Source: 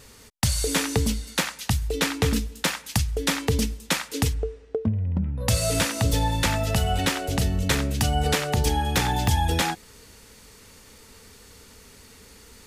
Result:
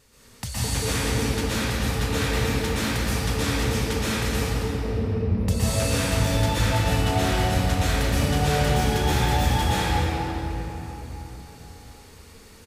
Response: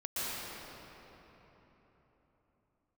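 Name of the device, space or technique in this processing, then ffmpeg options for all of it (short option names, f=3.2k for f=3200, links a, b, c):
cave: -filter_complex "[0:a]aecho=1:1:225:0.266[a];[1:a]atrim=start_sample=2205[b];[a][b]afir=irnorm=-1:irlink=0,volume=-5dB"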